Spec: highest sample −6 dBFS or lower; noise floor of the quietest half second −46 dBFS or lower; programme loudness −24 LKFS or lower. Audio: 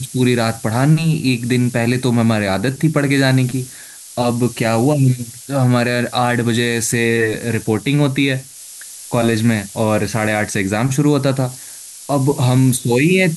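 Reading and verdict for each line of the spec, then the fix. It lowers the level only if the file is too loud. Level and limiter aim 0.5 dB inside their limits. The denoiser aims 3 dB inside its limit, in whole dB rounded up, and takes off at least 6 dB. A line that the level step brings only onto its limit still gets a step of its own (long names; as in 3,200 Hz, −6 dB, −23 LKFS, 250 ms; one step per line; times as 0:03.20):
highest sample −3.0 dBFS: out of spec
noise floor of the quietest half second −36 dBFS: out of spec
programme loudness −16.5 LKFS: out of spec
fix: broadband denoise 6 dB, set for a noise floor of −36 dBFS
level −8 dB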